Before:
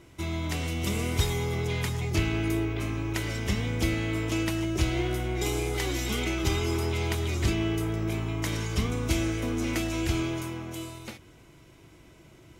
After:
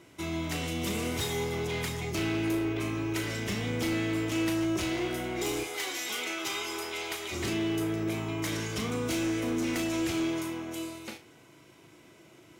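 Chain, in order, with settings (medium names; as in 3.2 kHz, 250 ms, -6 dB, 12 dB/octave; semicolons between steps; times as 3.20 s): Bessel high-pass 180 Hz, order 2, from 5.63 s 740 Hz, from 7.31 s 210 Hz; hard clipper -28 dBFS, distortion -14 dB; flutter echo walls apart 6.3 m, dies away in 0.25 s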